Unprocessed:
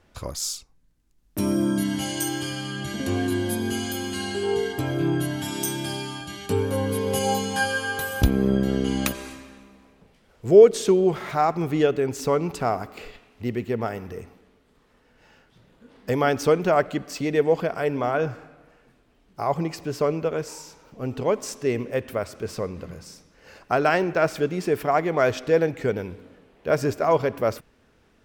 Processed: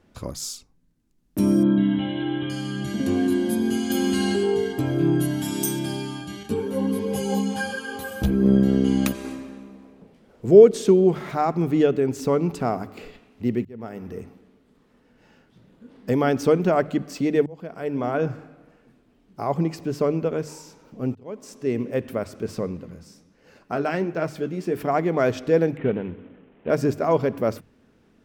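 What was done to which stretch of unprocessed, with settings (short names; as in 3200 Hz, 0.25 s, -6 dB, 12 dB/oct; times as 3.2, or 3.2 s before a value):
1.63–2.5 brick-wall FIR low-pass 4100 Hz
3.9–4.52 fast leveller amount 70%
5.19–5.79 high shelf 6600 Hz +7.5 dB
6.43–8.46 ensemble effect
9.24–10.46 bell 490 Hz +6 dB 2.5 oct
13.65–14.18 fade in
17.46–18.15 fade in
21.15–21.91 fade in
22.77–24.76 flange 1.4 Hz, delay 5.8 ms, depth 9.4 ms, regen +55%
25.77–26.7 CVSD 16 kbps
whole clip: bell 220 Hz +9.5 dB 1.9 oct; notches 50/100/150 Hz; gain -3.5 dB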